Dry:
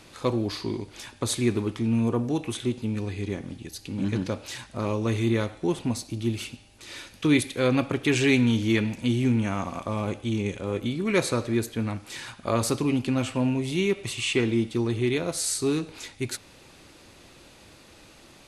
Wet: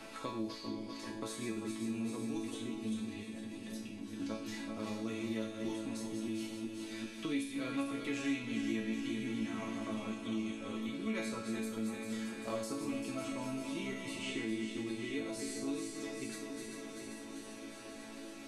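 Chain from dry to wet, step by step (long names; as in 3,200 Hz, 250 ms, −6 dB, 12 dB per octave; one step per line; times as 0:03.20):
feedback delay that plays each chunk backwards 196 ms, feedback 74%, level −7.5 dB
0:03.23–0:04.20: output level in coarse steps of 19 dB
resonators tuned to a chord A3 major, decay 0.47 s
on a send: echo machine with several playback heads 278 ms, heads first and third, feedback 68%, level −22 dB
on the sum: multiband upward and downward compressor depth 70%
level +6 dB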